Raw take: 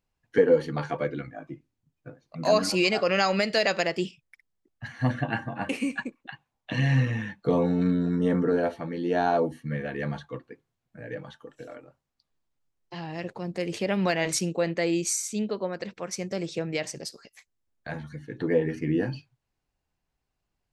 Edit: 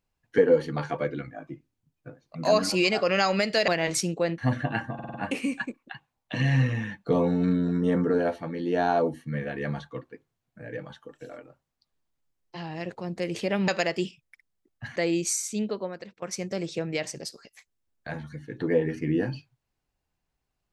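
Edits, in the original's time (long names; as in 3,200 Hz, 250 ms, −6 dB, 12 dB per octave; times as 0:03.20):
0:03.68–0:04.96: swap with 0:14.06–0:14.76
0:05.52: stutter 0.05 s, 5 plays
0:15.49–0:16.02: fade out, to −16.5 dB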